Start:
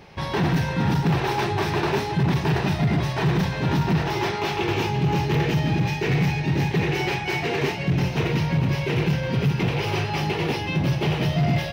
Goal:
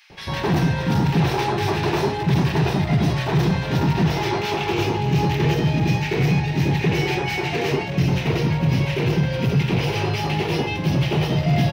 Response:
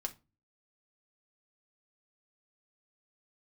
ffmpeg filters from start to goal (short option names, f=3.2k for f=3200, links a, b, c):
-filter_complex "[0:a]acrossover=split=1500[a][b];[a]adelay=100[c];[c][b]amix=inputs=2:normalize=0,volume=2.5dB"